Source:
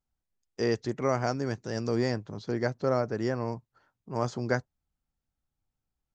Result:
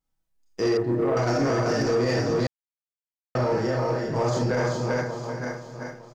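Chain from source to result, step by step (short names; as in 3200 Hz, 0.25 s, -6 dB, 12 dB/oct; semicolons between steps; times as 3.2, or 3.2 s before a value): regenerating reverse delay 0.454 s, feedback 50%, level -10 dB; comb 6.2 ms, depth 45%; feedback echo 0.387 s, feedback 20%, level -5 dB; Schroeder reverb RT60 0.41 s, combs from 25 ms, DRR -3.5 dB; limiter -17.5 dBFS, peak gain reduction 9.5 dB; 0.77–1.17 LPF 1100 Hz 12 dB/oct; sample leveller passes 1; 2.47–3.35 mute; gain +1 dB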